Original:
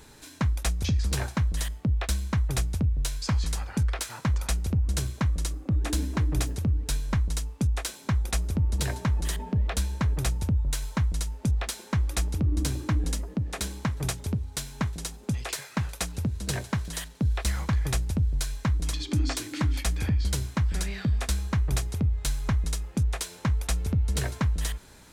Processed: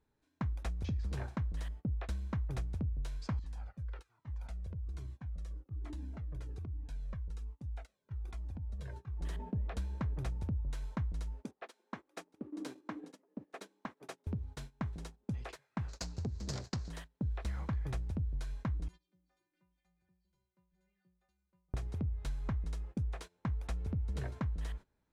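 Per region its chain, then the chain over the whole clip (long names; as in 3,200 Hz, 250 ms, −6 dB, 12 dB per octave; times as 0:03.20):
0:03.39–0:09.21: downward compressor 4 to 1, threshold −30 dBFS + flanger whose copies keep moving one way falling 1.2 Hz
0:11.44–0:14.27: high-pass filter 260 Hz 24 dB per octave + upward compression, threshold −53 dBFS
0:15.88–0:16.90: phase distortion by the signal itself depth 0.92 ms + low-pass filter 11,000 Hz + flat-topped bell 5,600 Hz +15 dB 1.1 octaves
0:18.88–0:21.74: downward compressor, threshold −26 dBFS + stiff-string resonator 180 Hz, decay 0.45 s, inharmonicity 0.008
whole clip: low-pass filter 1,200 Hz 6 dB per octave; noise gate −38 dBFS, range −20 dB; downward compressor 2 to 1, threshold −29 dBFS; level −6.5 dB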